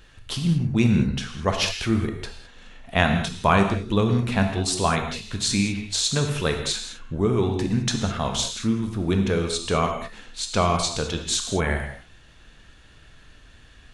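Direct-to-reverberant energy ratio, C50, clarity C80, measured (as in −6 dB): 4.0 dB, 6.0 dB, 8.0 dB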